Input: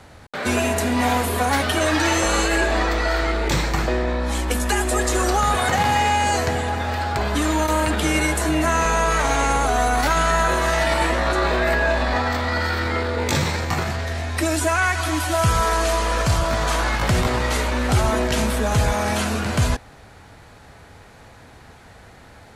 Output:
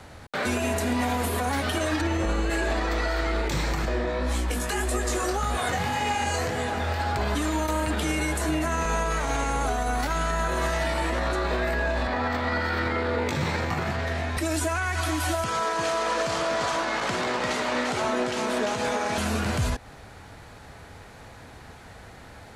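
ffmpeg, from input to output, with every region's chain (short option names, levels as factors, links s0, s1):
-filter_complex "[0:a]asettb=1/sr,asplit=3[s0][s1][s2];[s0]atrim=end=2.014[s3];[s1]atrim=start=2.01:end=2.5,asetpts=PTS-STARTPTS,afade=t=in:d=0.004:c=qsin,afade=t=out:st=0.486:d=0.004:c=qsin,acrossover=split=3900[s4][s5];[s5]acompressor=threshold=0.0178:ratio=4:attack=1:release=60[s6];[s4][s6]amix=inputs=2:normalize=0,lowshelf=f=380:g=8.5[s7];[s2]atrim=start=2.496[s8];[s3][s7]acrossfade=d=0.004:c1=hsin:c2=qsin[s9];[s9][s8]acrossfade=d=0.004:c1=qsin:c2=hsin,asettb=1/sr,asplit=3[s10][s11][s12];[s10]atrim=end=3.854[s13];[s11]atrim=start=3.85:end=7,asetpts=PTS-STARTPTS,afade=t=in:d=0.004:c=qsin,afade=t=out:st=3.146:d=0.004:c=qsin,bandreject=f=860:w=16,flanger=delay=16.5:depth=6.2:speed=1.8[s14];[s12]atrim=start=6.996[s15];[s13][s14]acrossfade=d=0.004:c1=hsin:c2=qsin[s16];[s16][s15]acrossfade=d=0.004:c1=qsin:c2=hsin,asettb=1/sr,asplit=3[s17][s18][s19];[s17]atrim=end=12.074[s20];[s18]atrim=start=12.07:end=14.37,asetpts=PTS-STARTPTS,afade=t=in:d=0.004:c=qsin,afade=t=out:st=2.296:d=0.004:c=qsin,highpass=100,bass=f=250:g=1,treble=f=4000:g=-8[s21];[s19]atrim=start=14.366[s22];[s20][s21]acrossfade=d=0.004:c1=hsin:c2=qsin[s23];[s23][s22]acrossfade=d=0.004:c1=qsin:c2=hsin,asettb=1/sr,asplit=3[s24][s25][s26];[s24]atrim=end=15.444[s27];[s25]atrim=start=15.44:end=19.18,asetpts=PTS-STARTPTS,afade=t=in:d=0.004:c=qsin,afade=t=out:st=3.736:d=0.004:c=qsin,highpass=280,lowpass=7200,aecho=1:1:345:0.596,atrim=end_sample=164934[s28];[s26]atrim=start=19.176[s29];[s27][s28]acrossfade=d=0.004:c1=hsin:c2=qsin[s30];[s30][s29]acrossfade=d=0.004:c1=qsin:c2=hsin,acrossover=split=450[s31][s32];[s32]acompressor=threshold=0.0891:ratio=6[s33];[s31][s33]amix=inputs=2:normalize=0,alimiter=limit=0.141:level=0:latency=1:release=145"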